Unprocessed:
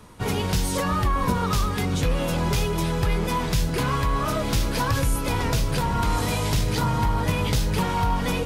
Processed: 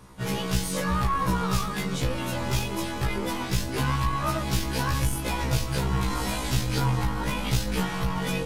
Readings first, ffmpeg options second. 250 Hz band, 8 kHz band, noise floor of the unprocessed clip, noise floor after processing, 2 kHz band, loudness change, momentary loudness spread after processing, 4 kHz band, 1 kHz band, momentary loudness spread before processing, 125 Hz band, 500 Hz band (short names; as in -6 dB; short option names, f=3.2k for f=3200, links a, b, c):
-2.5 dB, -2.0 dB, -27 dBFS, -32 dBFS, -1.5 dB, -3.0 dB, 4 LU, -2.0 dB, -4.0 dB, 1 LU, -3.0 dB, -4.5 dB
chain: -af "aeval=exprs='0.266*(cos(1*acos(clip(val(0)/0.266,-1,1)))-cos(1*PI/2))+0.0335*(cos(6*acos(clip(val(0)/0.266,-1,1)))-cos(6*PI/2))+0.0168*(cos(8*acos(clip(val(0)/0.266,-1,1)))-cos(8*PI/2))':c=same,afftfilt=real='re*1.73*eq(mod(b,3),0)':imag='im*1.73*eq(mod(b,3),0)':win_size=2048:overlap=0.75"